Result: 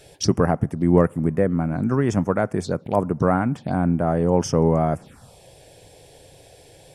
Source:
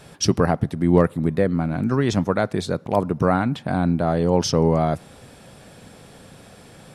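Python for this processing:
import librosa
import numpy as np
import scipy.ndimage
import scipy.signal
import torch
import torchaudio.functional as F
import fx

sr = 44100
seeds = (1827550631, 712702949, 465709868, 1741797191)

y = fx.env_phaser(x, sr, low_hz=170.0, high_hz=4000.0, full_db=-19.0)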